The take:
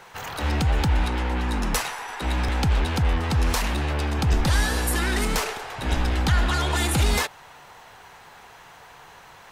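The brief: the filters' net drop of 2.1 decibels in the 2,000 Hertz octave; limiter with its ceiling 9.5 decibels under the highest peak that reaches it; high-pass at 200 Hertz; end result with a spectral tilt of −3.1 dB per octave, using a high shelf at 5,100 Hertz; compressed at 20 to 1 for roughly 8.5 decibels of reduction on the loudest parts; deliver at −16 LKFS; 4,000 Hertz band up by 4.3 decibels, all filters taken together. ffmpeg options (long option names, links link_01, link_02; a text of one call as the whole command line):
ffmpeg -i in.wav -af "highpass=200,equalizer=frequency=2000:width_type=o:gain=-4,equalizer=frequency=4000:width_type=o:gain=8.5,highshelf=frequency=5100:gain=-5,acompressor=threshold=-29dB:ratio=20,volume=18.5dB,alimiter=limit=-6.5dB:level=0:latency=1" out.wav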